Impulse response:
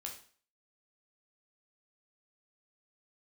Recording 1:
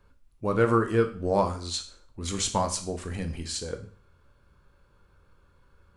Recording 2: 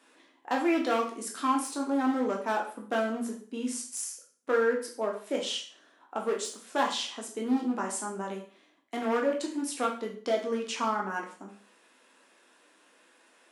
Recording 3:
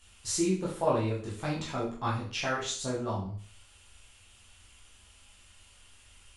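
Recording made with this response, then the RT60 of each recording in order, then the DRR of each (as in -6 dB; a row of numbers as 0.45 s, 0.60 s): 2; 0.45 s, 0.45 s, 0.45 s; 5.0 dB, -0.5 dB, -6.5 dB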